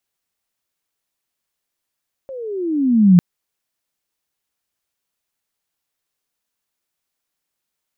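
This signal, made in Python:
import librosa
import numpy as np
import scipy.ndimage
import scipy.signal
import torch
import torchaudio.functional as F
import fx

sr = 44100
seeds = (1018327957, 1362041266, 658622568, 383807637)

y = fx.chirp(sr, length_s=0.9, from_hz=550.0, to_hz=170.0, law='logarithmic', from_db=-28.5, to_db=-4.5)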